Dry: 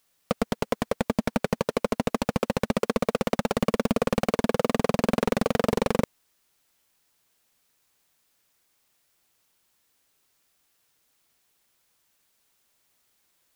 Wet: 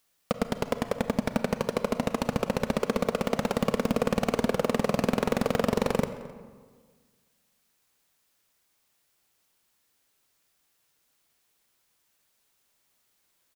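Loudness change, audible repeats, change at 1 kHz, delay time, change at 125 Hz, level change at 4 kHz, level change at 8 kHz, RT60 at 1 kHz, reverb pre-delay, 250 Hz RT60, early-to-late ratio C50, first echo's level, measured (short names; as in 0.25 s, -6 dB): -1.5 dB, 1, -1.5 dB, 0.262 s, -1.5 dB, -1.5 dB, -2.0 dB, 1.5 s, 31 ms, 1.8 s, 11.0 dB, -21.5 dB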